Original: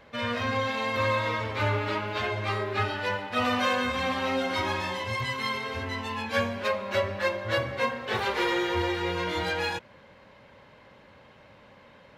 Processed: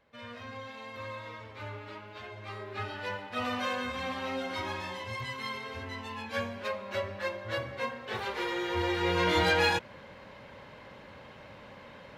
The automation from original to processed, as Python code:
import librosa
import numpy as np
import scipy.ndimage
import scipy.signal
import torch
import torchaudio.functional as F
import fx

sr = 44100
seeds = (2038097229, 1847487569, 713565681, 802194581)

y = fx.gain(x, sr, db=fx.line((2.29, -15.0), (3.03, -7.0), (8.54, -7.0), (9.29, 4.0)))